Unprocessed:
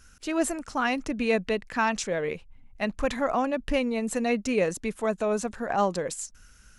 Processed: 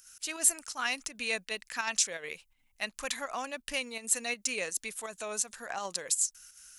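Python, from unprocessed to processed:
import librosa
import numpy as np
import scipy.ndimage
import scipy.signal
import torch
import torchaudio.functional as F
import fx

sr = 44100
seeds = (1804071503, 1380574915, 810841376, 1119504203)

y = F.preemphasis(torch.from_numpy(x), 0.97).numpy()
y = fx.volume_shaper(y, sr, bpm=83, per_beat=2, depth_db=-7, release_ms=63.0, shape='slow start')
y = y * librosa.db_to_amplitude(8.5)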